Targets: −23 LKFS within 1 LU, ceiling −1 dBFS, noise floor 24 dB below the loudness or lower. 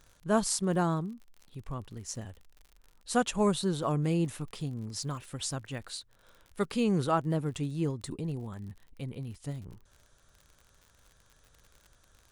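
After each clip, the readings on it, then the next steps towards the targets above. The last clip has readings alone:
crackle rate 54 per second; integrated loudness −32.5 LKFS; sample peak −14.5 dBFS; target loudness −23.0 LKFS
→ click removal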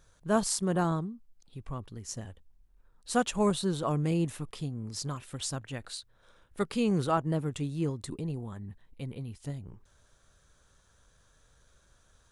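crackle rate 0 per second; integrated loudness −32.5 LKFS; sample peak −14.5 dBFS; target loudness −23.0 LKFS
→ level +9.5 dB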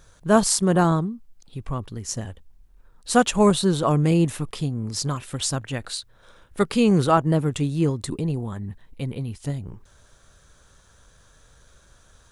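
integrated loudness −23.0 LKFS; sample peak −5.0 dBFS; background noise floor −56 dBFS

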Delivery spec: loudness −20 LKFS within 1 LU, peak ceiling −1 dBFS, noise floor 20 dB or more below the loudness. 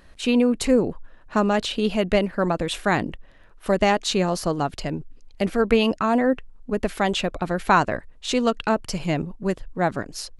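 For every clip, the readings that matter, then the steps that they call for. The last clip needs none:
integrated loudness −23.0 LKFS; sample peak −5.0 dBFS; target loudness −20.0 LKFS
→ level +3 dB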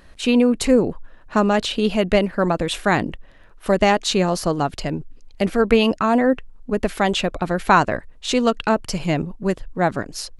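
integrated loudness −20.0 LKFS; sample peak −2.0 dBFS; background noise floor −45 dBFS

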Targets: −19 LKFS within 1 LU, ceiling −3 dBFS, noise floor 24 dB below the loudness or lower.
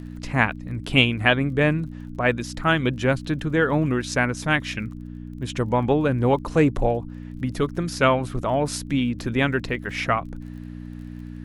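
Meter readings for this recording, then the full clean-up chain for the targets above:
crackle rate 30 per second; mains hum 60 Hz; hum harmonics up to 300 Hz; level of the hum −34 dBFS; integrated loudness −23.0 LKFS; sample peak −2.0 dBFS; target loudness −19.0 LKFS
→ click removal
hum removal 60 Hz, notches 5
level +4 dB
brickwall limiter −3 dBFS

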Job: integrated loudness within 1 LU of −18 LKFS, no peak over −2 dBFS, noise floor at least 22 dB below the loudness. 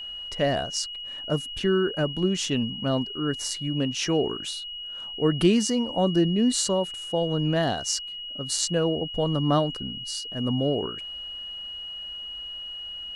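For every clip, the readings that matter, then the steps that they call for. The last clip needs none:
interfering tone 2,900 Hz; level of the tone −34 dBFS; integrated loudness −26.5 LKFS; sample peak −7.5 dBFS; target loudness −18.0 LKFS
→ notch filter 2,900 Hz, Q 30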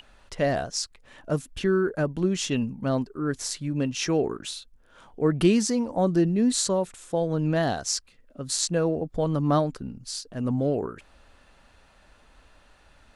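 interfering tone none found; integrated loudness −26.0 LKFS; sample peak −7.5 dBFS; target loudness −18.0 LKFS
→ level +8 dB
brickwall limiter −2 dBFS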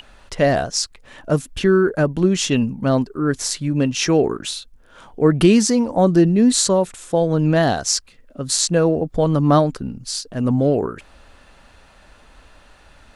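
integrated loudness −18.5 LKFS; sample peak −2.0 dBFS; background noise floor −50 dBFS

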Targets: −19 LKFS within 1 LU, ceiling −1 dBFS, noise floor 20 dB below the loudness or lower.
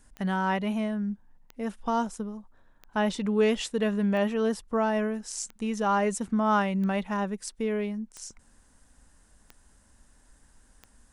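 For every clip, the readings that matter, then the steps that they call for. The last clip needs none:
number of clicks 9; integrated loudness −28.5 LKFS; sample peak −13.5 dBFS; target loudness −19.0 LKFS
→ click removal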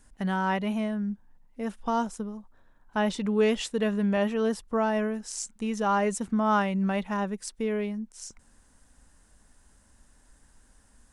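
number of clicks 0; integrated loudness −28.5 LKFS; sample peak −13.5 dBFS; target loudness −19.0 LKFS
→ level +9.5 dB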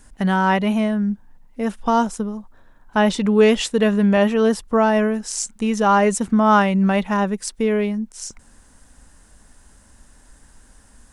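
integrated loudness −19.0 LKFS; sample peak −4.0 dBFS; background noise floor −52 dBFS

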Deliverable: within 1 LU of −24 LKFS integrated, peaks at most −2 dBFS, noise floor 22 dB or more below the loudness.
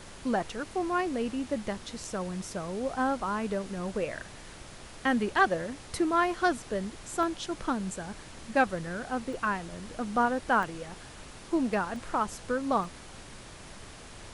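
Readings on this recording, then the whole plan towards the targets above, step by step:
number of dropouts 5; longest dropout 1.1 ms; background noise floor −47 dBFS; target noise floor −53 dBFS; integrated loudness −31.0 LKFS; sample peak −11.0 dBFS; target loudness −24.0 LKFS
→ repair the gap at 0:07.23/0:09.33/0:10.63/0:11.96/0:12.84, 1.1 ms
noise reduction from a noise print 6 dB
level +7 dB

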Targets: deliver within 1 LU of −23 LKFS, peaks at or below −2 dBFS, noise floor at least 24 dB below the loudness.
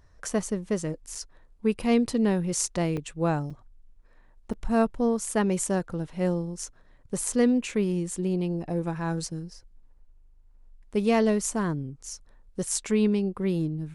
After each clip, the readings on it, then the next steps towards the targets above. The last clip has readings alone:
number of dropouts 4; longest dropout 5.2 ms; integrated loudness −27.5 LKFS; sample peak −8.5 dBFS; target loudness −23.0 LKFS
→ repair the gap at 0:01.15/0:02.97/0:03.50/0:04.53, 5.2 ms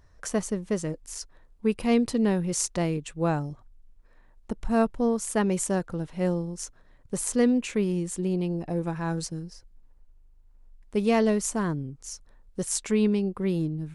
number of dropouts 0; integrated loudness −27.5 LKFS; sample peak −8.5 dBFS; target loudness −23.0 LKFS
→ level +4.5 dB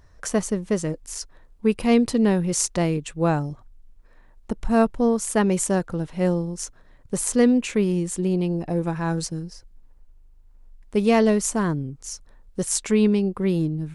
integrated loudness −23.0 LKFS; sample peak −4.0 dBFS; background noise floor −52 dBFS

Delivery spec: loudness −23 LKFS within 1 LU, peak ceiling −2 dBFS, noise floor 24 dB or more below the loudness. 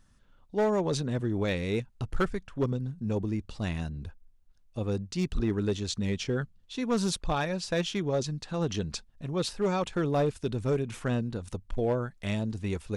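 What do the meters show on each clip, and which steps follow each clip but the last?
share of clipped samples 0.8%; peaks flattened at −20.5 dBFS; integrated loudness −31.0 LKFS; sample peak −20.5 dBFS; target loudness −23.0 LKFS
→ clipped peaks rebuilt −20.5 dBFS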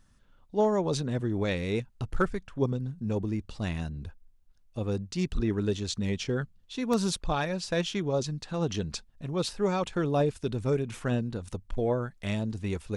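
share of clipped samples 0.0%; integrated loudness −30.5 LKFS; sample peak −13.0 dBFS; target loudness −23.0 LKFS
→ level +7.5 dB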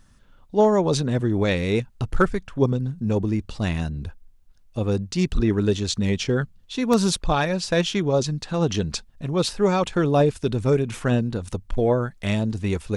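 integrated loudness −23.0 LKFS; sample peak −5.5 dBFS; background noise floor −54 dBFS

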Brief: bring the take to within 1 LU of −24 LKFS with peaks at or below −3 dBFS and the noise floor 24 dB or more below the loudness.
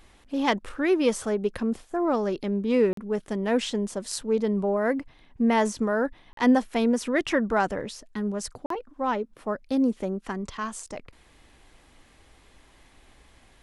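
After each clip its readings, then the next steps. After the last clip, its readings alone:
number of dropouts 3; longest dropout 43 ms; integrated loudness −26.5 LKFS; sample peak −8.0 dBFS; target loudness −24.0 LKFS
→ repair the gap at 0:02.93/0:06.33/0:08.66, 43 ms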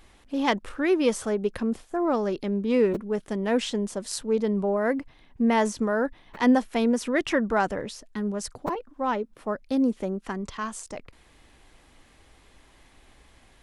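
number of dropouts 0; integrated loudness −26.5 LKFS; sample peak −8.0 dBFS; target loudness −24.0 LKFS
→ level +2.5 dB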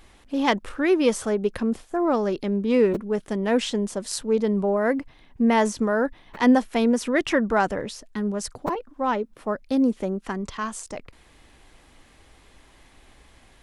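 integrated loudness −24.0 LKFS; sample peak −5.5 dBFS; background noise floor −55 dBFS

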